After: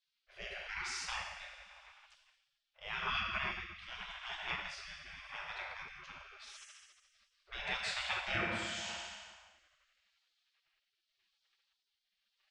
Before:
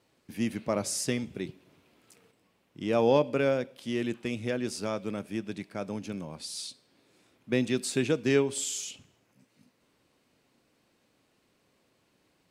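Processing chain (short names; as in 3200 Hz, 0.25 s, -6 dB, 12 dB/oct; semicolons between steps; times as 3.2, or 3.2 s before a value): tape spacing loss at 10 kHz 40 dB; FDN reverb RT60 2.1 s, low-frequency decay 0.85×, high-frequency decay 0.8×, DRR -2 dB; spectral gate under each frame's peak -30 dB weak; rotary speaker horn 0.85 Hz; gain +12.5 dB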